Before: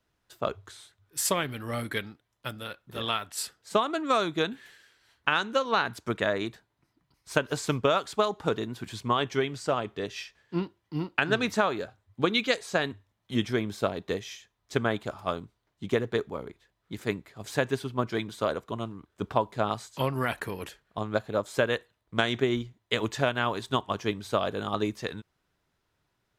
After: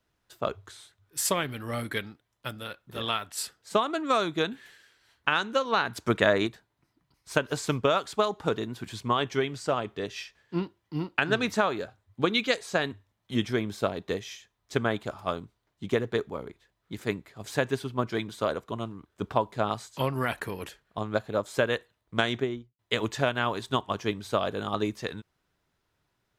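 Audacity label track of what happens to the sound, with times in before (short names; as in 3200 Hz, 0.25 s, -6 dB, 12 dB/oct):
5.960000	6.470000	gain +5 dB
22.250000	22.790000	studio fade out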